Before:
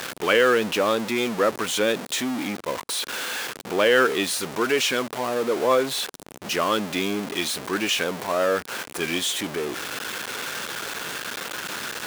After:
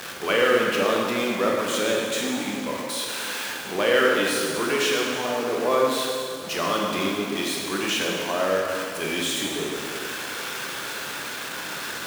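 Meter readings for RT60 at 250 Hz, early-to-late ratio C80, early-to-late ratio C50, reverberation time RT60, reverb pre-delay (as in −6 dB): 2.2 s, 1.0 dB, −0.5 dB, 2.2 s, 7 ms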